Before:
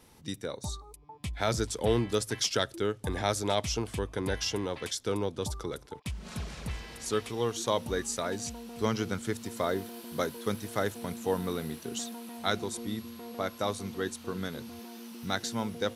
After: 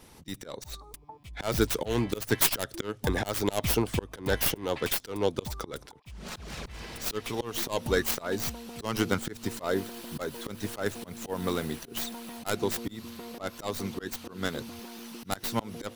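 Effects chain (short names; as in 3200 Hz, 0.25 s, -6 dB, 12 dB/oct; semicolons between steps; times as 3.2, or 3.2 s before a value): tracing distortion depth 0.42 ms; auto swell 0.185 s; harmonic-percussive split percussive +8 dB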